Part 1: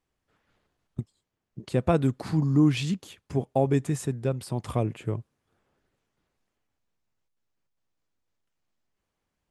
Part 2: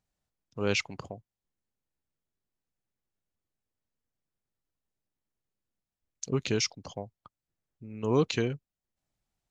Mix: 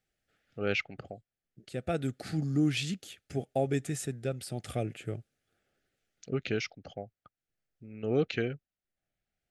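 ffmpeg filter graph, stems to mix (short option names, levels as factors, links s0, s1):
-filter_complex "[0:a]volume=0.631[s0];[1:a]lowpass=2200,volume=0.944,asplit=2[s1][s2];[s2]apad=whole_len=419019[s3];[s0][s3]sidechaincompress=threshold=0.00708:ratio=8:attack=35:release=1110[s4];[s4][s1]amix=inputs=2:normalize=0,asuperstop=centerf=1000:order=4:qfactor=2,tiltshelf=f=660:g=-4"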